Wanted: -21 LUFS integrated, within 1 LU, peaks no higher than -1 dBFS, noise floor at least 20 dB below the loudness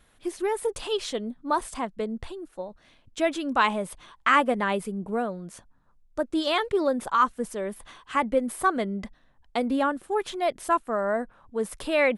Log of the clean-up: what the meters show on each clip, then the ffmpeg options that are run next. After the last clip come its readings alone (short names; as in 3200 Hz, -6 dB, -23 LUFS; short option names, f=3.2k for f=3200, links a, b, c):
loudness -27.0 LUFS; peak -7.5 dBFS; loudness target -21.0 LUFS
-> -af "volume=6dB"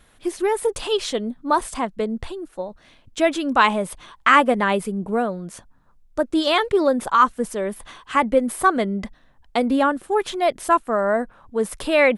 loudness -21.0 LUFS; peak -1.5 dBFS; noise floor -55 dBFS